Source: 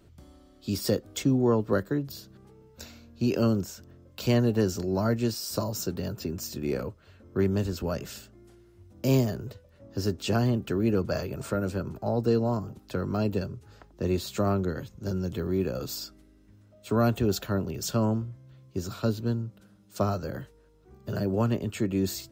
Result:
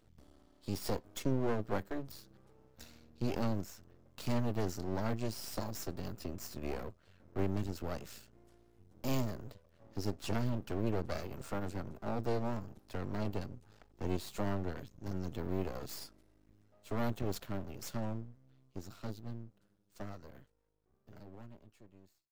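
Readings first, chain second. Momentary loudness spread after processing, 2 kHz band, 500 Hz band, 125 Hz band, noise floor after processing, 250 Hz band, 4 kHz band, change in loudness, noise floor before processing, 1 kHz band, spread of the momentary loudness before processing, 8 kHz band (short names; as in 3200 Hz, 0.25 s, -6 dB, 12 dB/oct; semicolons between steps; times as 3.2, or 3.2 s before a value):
17 LU, -8.5 dB, -11.5 dB, -11.0 dB, -72 dBFS, -11.5 dB, -11.0 dB, -11.0 dB, -58 dBFS, -7.5 dB, 15 LU, -11.0 dB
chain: ending faded out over 6.16 s; half-wave rectifier; gain -5.5 dB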